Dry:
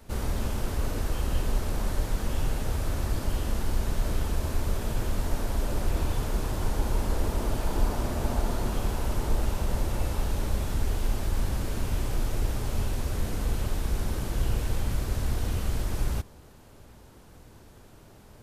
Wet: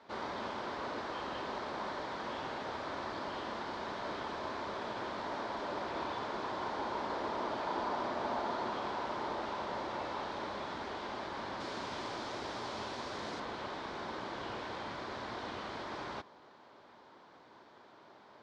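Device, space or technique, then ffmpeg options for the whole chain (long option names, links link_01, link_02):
phone earpiece: -filter_complex "[0:a]highpass=400,equalizer=frequency=470:width_type=q:width=4:gain=-4,equalizer=frequency=1000:width_type=q:width=4:gain=5,equalizer=frequency=2700:width_type=q:width=4:gain=-7,lowpass=frequency=4200:width=0.5412,lowpass=frequency=4200:width=1.3066,asettb=1/sr,asplit=3[link_01][link_02][link_03];[link_01]atrim=end=11.604[link_04];[link_02]atrim=start=11.6:end=13.4,asetpts=PTS-STARTPTS,afade=type=in:duration=0.004:curve=qsin,afade=type=out:start_time=1.796:duration=0.004:curve=qsin,bass=frequency=250:gain=1,treble=frequency=4000:gain=8[link_05];[link_03]atrim=start=13.396[link_06];[link_04][link_05]acrossfade=duration=0.004:curve1=hsin:curve2=qsin[link_07];[link_07][link_06]acrossfade=duration=0.004:curve1=qsin:curve2=hsin"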